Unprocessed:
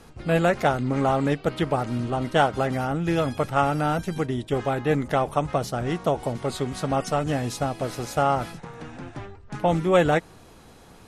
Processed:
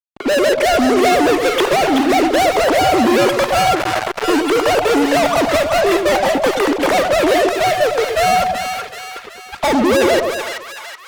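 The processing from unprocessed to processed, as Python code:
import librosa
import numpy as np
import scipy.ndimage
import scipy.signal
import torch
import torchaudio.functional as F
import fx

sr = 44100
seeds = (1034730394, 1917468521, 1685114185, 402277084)

p1 = fx.sine_speech(x, sr)
p2 = fx.dynamic_eq(p1, sr, hz=900.0, q=1.9, threshold_db=-37.0, ratio=4.0, max_db=6)
p3 = fx.rider(p2, sr, range_db=3, speed_s=0.5)
p4 = p2 + F.gain(torch.from_numpy(p3), 0.0).numpy()
p5 = fx.fuzz(p4, sr, gain_db=31.0, gate_db=-36.0)
p6 = p5 + fx.echo_split(p5, sr, split_hz=950.0, low_ms=109, high_ms=378, feedback_pct=52, wet_db=-5.0, dry=0)
p7 = fx.vibrato(p6, sr, rate_hz=0.58, depth_cents=13.0)
y = fx.transformer_sat(p7, sr, knee_hz=1700.0, at=(3.75, 4.24))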